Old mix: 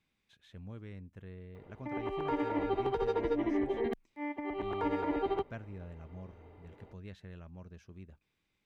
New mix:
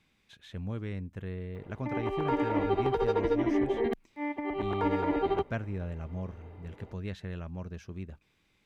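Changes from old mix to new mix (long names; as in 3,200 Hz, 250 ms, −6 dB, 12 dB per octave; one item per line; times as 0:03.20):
speech +10.0 dB
background +4.0 dB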